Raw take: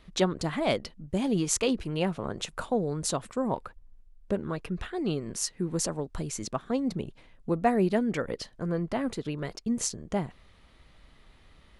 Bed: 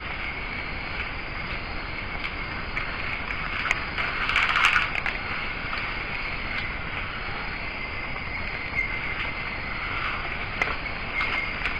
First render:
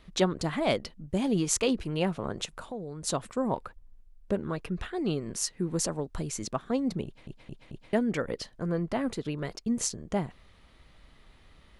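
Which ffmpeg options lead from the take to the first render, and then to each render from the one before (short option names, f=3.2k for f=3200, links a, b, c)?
-filter_complex "[0:a]asplit=3[a][b][c];[a]afade=t=out:st=2.45:d=0.02[d];[b]acompressor=threshold=-42dB:ratio=2:attack=3.2:release=140:knee=1:detection=peak,afade=t=in:st=2.45:d=0.02,afade=t=out:st=3.06:d=0.02[e];[c]afade=t=in:st=3.06:d=0.02[f];[d][e][f]amix=inputs=3:normalize=0,asplit=5[g][h][i][j][k];[g]atrim=end=7.272[l];[h]atrim=start=7.048:end=7.272[m];[i]atrim=start=7.048:end=7.272[n];[j]atrim=start=7.048:end=7.272[o];[k]atrim=start=7.928[p];[l][m]acrossfade=d=0.004:c1=hsin:c2=hsin[q];[q][n]acrossfade=d=0.004:c1=hsin:c2=hsin[r];[r][o]acrossfade=d=0.004:c1=hsin:c2=hsin[s];[s][p]acrossfade=d=0.004:c1=hsin:c2=hsin"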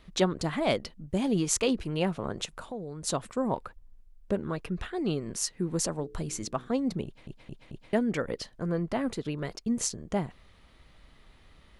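-filter_complex "[0:a]asettb=1/sr,asplit=3[a][b][c];[a]atrim=end=5.964[d];[b]atrim=start=5.96:end=6.68,asetpts=PTS-STARTPTS,afade=t=in:d=0.004:c=qsin,afade=t=out:st=0.716:d=0.004:c=qsin,bandreject=f=61.79:t=h:w=4,bandreject=f=123.58:t=h:w=4,bandreject=f=185.37:t=h:w=4,bandreject=f=247.16:t=h:w=4,bandreject=f=308.95:t=h:w=4,bandreject=f=370.74:t=h:w=4,bandreject=f=432.53:t=h:w=4,bandreject=f=494.32:t=h:w=4[e];[c]atrim=start=6.676[f];[d][e]acrossfade=d=0.004:c1=hsin:c2=qsin[g];[g][f]acrossfade=d=0.004:c1=qsin:c2=hsin"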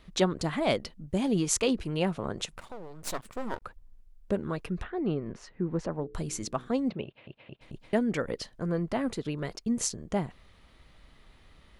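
-filter_complex "[0:a]asettb=1/sr,asplit=3[a][b][c];[a]atrim=end=2.564[d];[b]atrim=start=2.56:end=3.62,asetpts=PTS-STARTPTS,afade=t=in:d=0.004:c=qsin,afade=t=out:st=1.056:d=0.004:c=qsin,aeval=exprs='max(val(0),0)':c=same[e];[c]atrim=start=3.616[f];[d][e]acrossfade=d=0.004:c1=hsin:c2=qsin[g];[g][f]acrossfade=d=0.004:c1=qsin:c2=hsin,asplit=3[h][i][j];[h]afade=t=out:st=4.82:d=0.02[k];[i]lowpass=1.9k,afade=t=in:st=4.82:d=0.02,afade=t=out:st=6.13:d=0.02[l];[j]afade=t=in:st=6.13:d=0.02[m];[k][l][m]amix=inputs=3:normalize=0,asettb=1/sr,asplit=3[n][o][p];[n]atrim=end=6.904[q];[o]atrim=start=6.9:end=7.61,asetpts=PTS-STARTPTS,afade=t=in:d=0.004:c=qsin,afade=t=out:st=0.706:d=0.004:c=qsin,highpass=120,equalizer=f=180:t=q:w=4:g=-7,equalizer=f=280:t=q:w=4:g=-5,equalizer=f=580:t=q:w=4:g=5,equalizer=f=2.7k:t=q:w=4:g=8,lowpass=f=3.5k:w=0.5412,lowpass=f=3.5k:w=1.3066[r];[p]atrim=start=7.606[s];[q][r]acrossfade=d=0.004:c1=hsin:c2=qsin[t];[t][s]acrossfade=d=0.004:c1=qsin:c2=hsin"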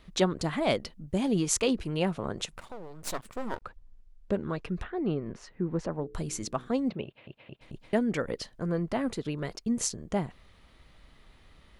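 -filter_complex "[0:a]asettb=1/sr,asplit=3[a][b][c];[a]atrim=end=3.604[d];[b]atrim=start=3.6:end=4.69,asetpts=PTS-STARTPTS,afade=t=in:d=0.004:c=qsin,afade=t=out:st=1.086:d=0.004:c=qsin,lowpass=6.9k[e];[c]atrim=start=4.686[f];[d][e]acrossfade=d=0.004:c1=hsin:c2=qsin[g];[g][f]acrossfade=d=0.004:c1=qsin:c2=hsin"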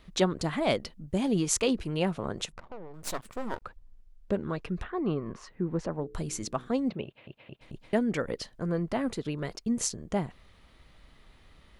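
-filter_complex "[0:a]asettb=1/sr,asplit=3[a][b][c];[a]atrim=end=2.524[d];[b]atrim=start=2.52:end=2.94,asetpts=PTS-STARTPTS,afade=t=in:d=0.004:c=qsin,afade=t=out:st=0.416:d=0.004:c=qsin,adynamicsmooth=sensitivity=7.5:basefreq=760[e];[c]atrim=start=2.936[f];[d][e]acrossfade=d=0.004:c1=hsin:c2=qsin[g];[g][f]acrossfade=d=0.004:c1=qsin:c2=hsin,asettb=1/sr,asplit=3[h][i][j];[h]atrim=end=4.894[k];[i]atrim=start=4.89:end=5.48,asetpts=PTS-STARTPTS,afade=t=in:d=0.004:c=qsin,afade=t=out:st=0.586:d=0.004:c=qsin,equalizer=f=1.1k:w=4.9:g=13.5[l];[j]atrim=start=5.476[m];[k][l]acrossfade=d=0.004:c1=hsin:c2=qsin[n];[n][m]acrossfade=d=0.004:c1=qsin:c2=hsin"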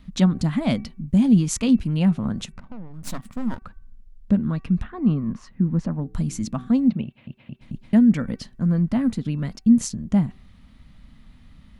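-af "lowshelf=f=300:t=q:w=3:g=8.5,bandreject=f=381.1:t=h:w=4,bandreject=f=762.2:t=h:w=4,bandreject=f=1.1433k:t=h:w=4,bandreject=f=1.5244k:t=h:w=4,bandreject=f=1.9055k:t=h:w=4,bandreject=f=2.2866k:t=h:w=4,bandreject=f=2.6677k:t=h:w=4"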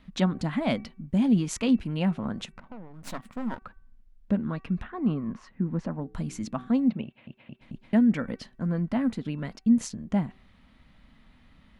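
-af "bass=f=250:g=-10,treble=f=4k:g=-9,bandreject=f=1.2k:w=26"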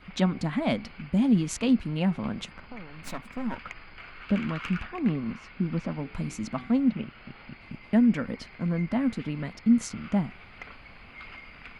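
-filter_complex "[1:a]volume=-18.5dB[a];[0:a][a]amix=inputs=2:normalize=0"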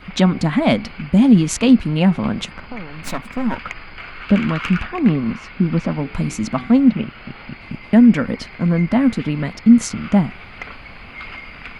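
-af "volume=11dB,alimiter=limit=-2dB:level=0:latency=1"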